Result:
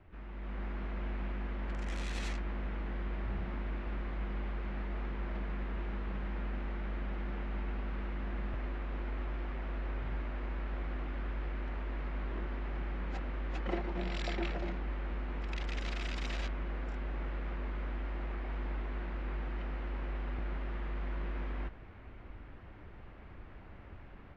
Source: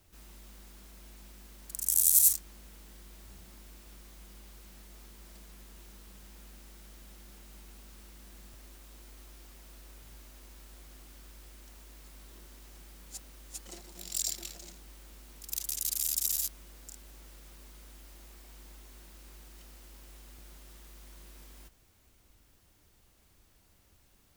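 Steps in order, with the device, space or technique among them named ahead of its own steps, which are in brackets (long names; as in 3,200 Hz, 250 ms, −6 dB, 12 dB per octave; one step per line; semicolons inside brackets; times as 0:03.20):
action camera in a waterproof case (low-pass filter 2,200 Hz 24 dB per octave; automatic gain control gain up to 9 dB; level +7 dB; AAC 64 kbit/s 44,100 Hz)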